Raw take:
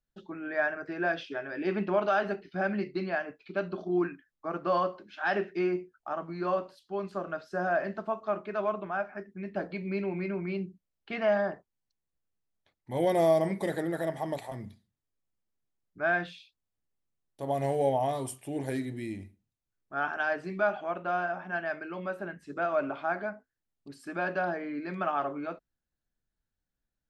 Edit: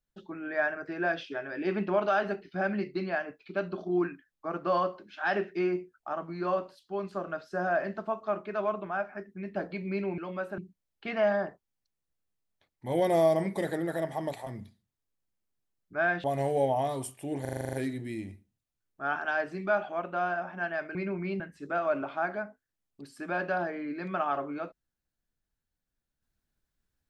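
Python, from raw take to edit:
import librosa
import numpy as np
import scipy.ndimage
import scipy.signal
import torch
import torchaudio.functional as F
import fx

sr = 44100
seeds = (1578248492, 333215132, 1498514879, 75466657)

y = fx.edit(x, sr, fx.swap(start_s=10.18, length_s=0.45, other_s=21.87, other_length_s=0.4),
    fx.cut(start_s=16.29, length_s=1.19),
    fx.stutter(start_s=18.65, slice_s=0.04, count=9), tone=tone)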